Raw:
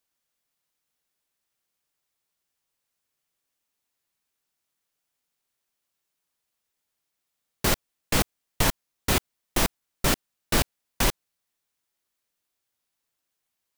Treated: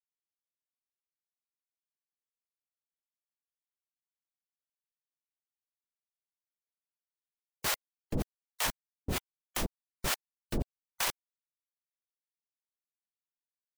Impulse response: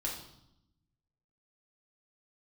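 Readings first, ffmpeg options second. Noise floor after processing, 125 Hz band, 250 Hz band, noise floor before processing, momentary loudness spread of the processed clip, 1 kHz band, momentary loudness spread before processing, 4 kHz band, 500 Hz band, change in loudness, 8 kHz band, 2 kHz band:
under -85 dBFS, -10.0 dB, -10.0 dB, -82 dBFS, 8 LU, -9.5 dB, 4 LU, -8.5 dB, -11.0 dB, -9.0 dB, -8.5 dB, -8.5 dB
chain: -filter_complex "[0:a]afftfilt=real='re*gte(hypot(re,im),0.0112)':imag='im*gte(hypot(re,im),0.0112)':win_size=1024:overlap=0.75,alimiter=limit=0.141:level=0:latency=1:release=14,acrossover=split=590[s0][s1];[s0]aeval=exprs='val(0)*(1-1/2+1/2*cos(2*PI*3.3*n/s))':c=same[s2];[s1]aeval=exprs='val(0)*(1-1/2-1/2*cos(2*PI*3.3*n/s))':c=same[s3];[s2][s3]amix=inputs=2:normalize=0"

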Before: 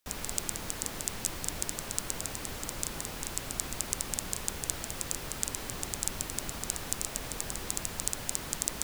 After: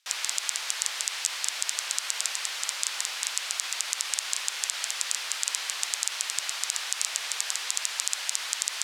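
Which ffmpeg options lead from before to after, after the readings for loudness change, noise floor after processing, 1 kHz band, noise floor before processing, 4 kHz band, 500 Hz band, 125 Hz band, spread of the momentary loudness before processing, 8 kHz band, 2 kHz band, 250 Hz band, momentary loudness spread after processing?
+6.0 dB, -37 dBFS, +2.5 dB, -41 dBFS, +11.0 dB, -8.0 dB, under -40 dB, 3 LU, +5.5 dB, +9.0 dB, under -20 dB, 2 LU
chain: -af "highpass=740,lowpass=3800,aderivative,alimiter=level_in=12.6:limit=0.891:release=50:level=0:latency=1,volume=0.891"

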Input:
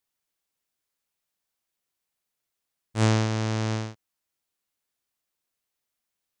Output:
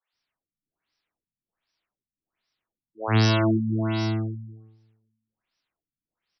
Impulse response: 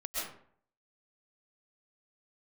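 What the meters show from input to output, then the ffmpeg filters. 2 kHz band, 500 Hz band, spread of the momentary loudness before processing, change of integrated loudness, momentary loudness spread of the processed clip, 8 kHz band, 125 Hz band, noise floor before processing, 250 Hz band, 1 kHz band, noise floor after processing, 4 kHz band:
+3.5 dB, +3.5 dB, 13 LU, +2.5 dB, 14 LU, -5.0 dB, +2.5 dB, -84 dBFS, +5.5 dB, +3.0 dB, under -85 dBFS, +4.5 dB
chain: -filter_complex "[0:a]crystalizer=i=4:c=0,acrossover=split=480|3700[s0][s1][s2];[s2]adelay=80[s3];[s0]adelay=130[s4];[s4][s1][s3]amix=inputs=3:normalize=0,asplit=2[s5][s6];[1:a]atrim=start_sample=2205,asetrate=22491,aresample=44100[s7];[s6][s7]afir=irnorm=-1:irlink=0,volume=0.501[s8];[s5][s8]amix=inputs=2:normalize=0,afftfilt=real='re*lt(b*sr/1024,260*pow(6000/260,0.5+0.5*sin(2*PI*1.3*pts/sr)))':imag='im*lt(b*sr/1024,260*pow(6000/260,0.5+0.5*sin(2*PI*1.3*pts/sr)))':win_size=1024:overlap=0.75,volume=0.891"

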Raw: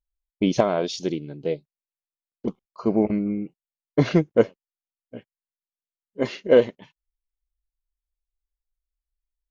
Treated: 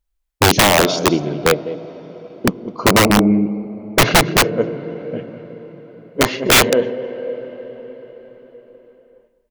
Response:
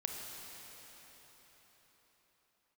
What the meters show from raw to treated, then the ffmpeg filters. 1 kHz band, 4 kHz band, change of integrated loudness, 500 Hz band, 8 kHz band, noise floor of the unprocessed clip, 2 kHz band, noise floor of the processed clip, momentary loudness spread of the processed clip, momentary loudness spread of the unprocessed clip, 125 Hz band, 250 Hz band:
+16.0 dB, +20.0 dB, +8.5 dB, +5.0 dB, no reading, under -85 dBFS, +19.0 dB, -66 dBFS, 20 LU, 15 LU, +8.0 dB, +7.0 dB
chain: -filter_complex "[0:a]aecho=1:1:204:0.237,asplit=2[s0][s1];[1:a]atrim=start_sample=2205,lowpass=3200[s2];[s1][s2]afir=irnorm=-1:irlink=0,volume=0.335[s3];[s0][s3]amix=inputs=2:normalize=0,aeval=exprs='(mod(4.73*val(0)+1,2)-1)/4.73':c=same,volume=2.82"

